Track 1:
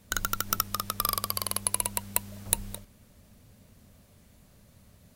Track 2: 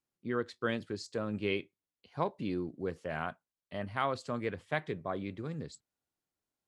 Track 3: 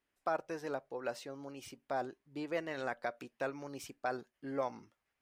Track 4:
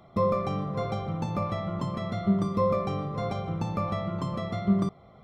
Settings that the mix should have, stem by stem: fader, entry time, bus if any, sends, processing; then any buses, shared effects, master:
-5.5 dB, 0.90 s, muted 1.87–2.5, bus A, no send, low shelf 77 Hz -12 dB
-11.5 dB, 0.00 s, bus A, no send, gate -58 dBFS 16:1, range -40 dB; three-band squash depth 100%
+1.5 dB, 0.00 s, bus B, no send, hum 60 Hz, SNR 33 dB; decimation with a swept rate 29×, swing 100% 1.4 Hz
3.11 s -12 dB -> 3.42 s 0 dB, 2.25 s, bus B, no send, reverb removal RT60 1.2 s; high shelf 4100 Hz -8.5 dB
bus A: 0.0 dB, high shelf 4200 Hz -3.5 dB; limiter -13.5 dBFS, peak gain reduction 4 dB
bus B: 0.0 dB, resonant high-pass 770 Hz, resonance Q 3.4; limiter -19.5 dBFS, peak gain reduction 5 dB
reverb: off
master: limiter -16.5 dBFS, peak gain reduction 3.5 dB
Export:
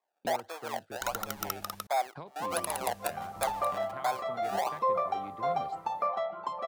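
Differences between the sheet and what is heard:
stem 3: missing hum 60 Hz, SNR 33 dB; master: missing limiter -16.5 dBFS, peak gain reduction 3.5 dB

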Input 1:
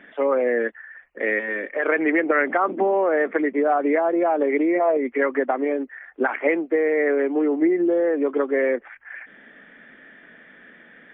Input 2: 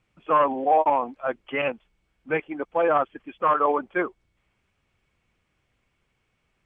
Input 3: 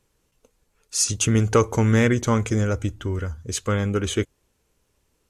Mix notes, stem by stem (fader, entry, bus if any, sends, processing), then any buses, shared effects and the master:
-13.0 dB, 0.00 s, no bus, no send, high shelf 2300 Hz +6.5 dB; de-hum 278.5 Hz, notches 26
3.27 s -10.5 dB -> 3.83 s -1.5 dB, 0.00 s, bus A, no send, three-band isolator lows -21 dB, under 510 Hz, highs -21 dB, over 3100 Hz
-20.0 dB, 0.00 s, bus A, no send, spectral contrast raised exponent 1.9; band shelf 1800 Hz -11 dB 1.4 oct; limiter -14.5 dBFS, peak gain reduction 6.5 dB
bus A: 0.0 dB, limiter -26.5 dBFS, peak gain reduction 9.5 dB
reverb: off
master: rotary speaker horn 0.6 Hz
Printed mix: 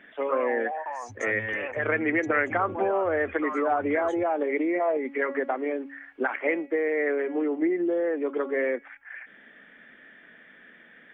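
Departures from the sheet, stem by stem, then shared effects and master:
stem 1 -13.0 dB -> -6.0 dB; stem 2 -10.5 dB -> +1.0 dB; master: missing rotary speaker horn 0.6 Hz

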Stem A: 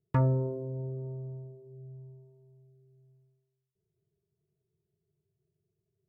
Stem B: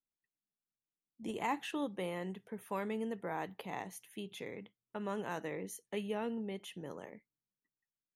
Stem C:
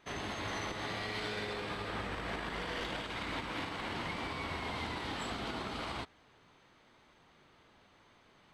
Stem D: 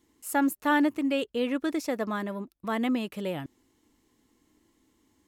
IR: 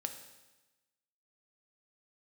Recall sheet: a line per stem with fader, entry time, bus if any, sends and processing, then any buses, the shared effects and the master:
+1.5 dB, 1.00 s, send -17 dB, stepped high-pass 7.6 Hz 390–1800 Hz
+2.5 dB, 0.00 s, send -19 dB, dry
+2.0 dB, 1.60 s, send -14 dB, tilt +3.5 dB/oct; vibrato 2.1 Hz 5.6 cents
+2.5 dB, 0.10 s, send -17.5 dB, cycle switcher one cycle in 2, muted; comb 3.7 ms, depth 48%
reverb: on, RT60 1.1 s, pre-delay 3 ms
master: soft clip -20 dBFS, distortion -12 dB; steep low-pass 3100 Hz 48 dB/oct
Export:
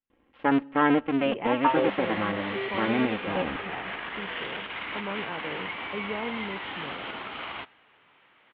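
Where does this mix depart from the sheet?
stem A: entry 1.00 s -> 1.50 s; master: missing soft clip -20 dBFS, distortion -12 dB

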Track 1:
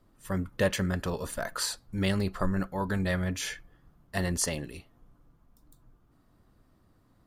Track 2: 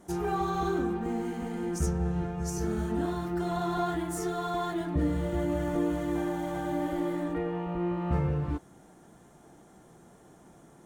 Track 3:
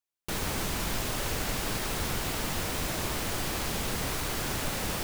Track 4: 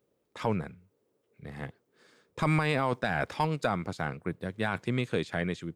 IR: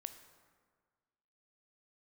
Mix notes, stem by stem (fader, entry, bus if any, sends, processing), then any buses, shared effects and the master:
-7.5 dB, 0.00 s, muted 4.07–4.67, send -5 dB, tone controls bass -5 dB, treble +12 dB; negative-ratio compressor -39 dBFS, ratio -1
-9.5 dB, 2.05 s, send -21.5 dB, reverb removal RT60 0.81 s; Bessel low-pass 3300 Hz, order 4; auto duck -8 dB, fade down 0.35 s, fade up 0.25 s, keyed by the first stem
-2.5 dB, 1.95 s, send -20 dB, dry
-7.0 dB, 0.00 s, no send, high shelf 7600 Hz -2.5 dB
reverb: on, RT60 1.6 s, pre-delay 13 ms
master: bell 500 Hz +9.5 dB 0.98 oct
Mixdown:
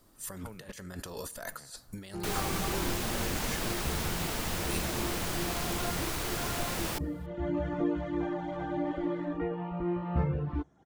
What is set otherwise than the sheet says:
stem 2 -9.5 dB -> 0.0 dB; stem 4 -7.0 dB -> -18.5 dB; master: missing bell 500 Hz +9.5 dB 0.98 oct

